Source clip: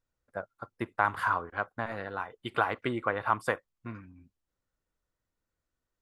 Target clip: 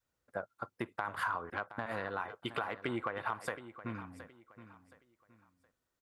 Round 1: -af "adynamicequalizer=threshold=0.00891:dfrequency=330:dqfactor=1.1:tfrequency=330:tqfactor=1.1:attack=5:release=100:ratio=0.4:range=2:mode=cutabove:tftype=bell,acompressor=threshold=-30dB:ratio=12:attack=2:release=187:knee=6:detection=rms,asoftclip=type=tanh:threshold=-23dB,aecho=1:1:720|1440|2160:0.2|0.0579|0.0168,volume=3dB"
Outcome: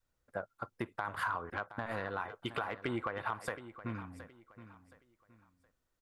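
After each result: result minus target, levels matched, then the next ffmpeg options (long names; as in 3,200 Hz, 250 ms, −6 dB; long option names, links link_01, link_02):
soft clipping: distortion +13 dB; 125 Hz band +2.5 dB
-af "adynamicequalizer=threshold=0.00891:dfrequency=330:dqfactor=1.1:tfrequency=330:tqfactor=1.1:attack=5:release=100:ratio=0.4:range=2:mode=cutabove:tftype=bell,acompressor=threshold=-30dB:ratio=12:attack=2:release=187:knee=6:detection=rms,asoftclip=type=tanh:threshold=-16dB,aecho=1:1:720|1440|2160:0.2|0.0579|0.0168,volume=3dB"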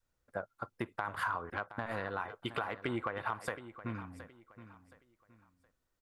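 125 Hz band +2.5 dB
-af "adynamicequalizer=threshold=0.00891:dfrequency=330:dqfactor=1.1:tfrequency=330:tqfactor=1.1:attack=5:release=100:ratio=0.4:range=2:mode=cutabove:tftype=bell,acompressor=threshold=-30dB:ratio=12:attack=2:release=187:knee=6:detection=rms,highpass=frequency=110:poles=1,asoftclip=type=tanh:threshold=-16dB,aecho=1:1:720|1440|2160:0.2|0.0579|0.0168,volume=3dB"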